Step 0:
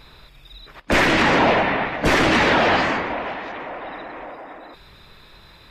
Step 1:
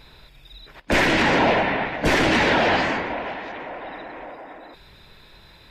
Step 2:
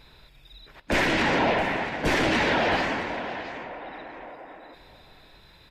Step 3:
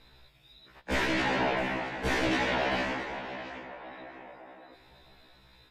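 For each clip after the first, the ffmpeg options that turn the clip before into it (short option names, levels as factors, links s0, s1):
-af "equalizer=f=1200:w=7:g=-7.5,volume=0.841"
-af "aecho=1:1:667:0.2,volume=0.596"
-af "afftfilt=real='re*1.73*eq(mod(b,3),0)':imag='im*1.73*eq(mod(b,3),0)':win_size=2048:overlap=0.75,volume=0.708"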